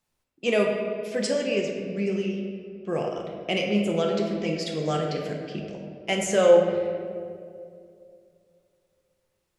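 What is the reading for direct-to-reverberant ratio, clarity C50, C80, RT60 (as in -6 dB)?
0.5 dB, 3.0 dB, 4.5 dB, 2.5 s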